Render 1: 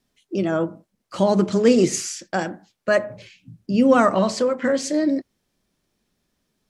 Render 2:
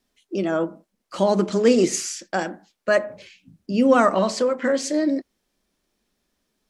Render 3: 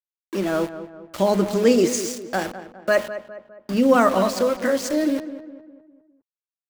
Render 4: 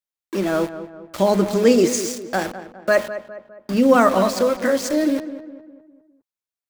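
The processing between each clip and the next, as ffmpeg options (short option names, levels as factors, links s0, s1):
-af "equalizer=f=120:w=2:g=-14.5"
-filter_complex "[0:a]aeval=exprs='val(0)*gte(abs(val(0)),0.0335)':c=same,asplit=2[s0][s1];[s1]adelay=204,lowpass=f=1900:p=1,volume=0.251,asplit=2[s2][s3];[s3]adelay=204,lowpass=f=1900:p=1,volume=0.48,asplit=2[s4][s5];[s5]adelay=204,lowpass=f=1900:p=1,volume=0.48,asplit=2[s6][s7];[s7]adelay=204,lowpass=f=1900:p=1,volume=0.48,asplit=2[s8][s9];[s9]adelay=204,lowpass=f=1900:p=1,volume=0.48[s10];[s2][s4][s6][s8][s10]amix=inputs=5:normalize=0[s11];[s0][s11]amix=inputs=2:normalize=0"
-af "bandreject=f=2900:w=24,volume=1.26"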